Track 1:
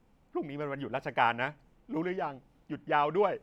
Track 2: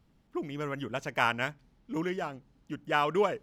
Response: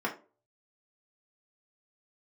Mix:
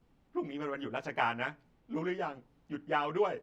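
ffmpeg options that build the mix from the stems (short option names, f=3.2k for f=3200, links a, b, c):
-filter_complex "[0:a]volume=-6dB[a];[1:a]lowpass=4.9k,acrossover=split=150|3200[b][c][d];[b]acompressor=threshold=-56dB:ratio=4[e];[c]acompressor=threshold=-29dB:ratio=4[f];[d]acompressor=threshold=-48dB:ratio=4[g];[e][f][g]amix=inputs=3:normalize=0,adelay=14,volume=-4.5dB,asplit=2[h][i];[i]volume=-19dB[j];[2:a]atrim=start_sample=2205[k];[j][k]afir=irnorm=-1:irlink=0[l];[a][h][l]amix=inputs=3:normalize=0"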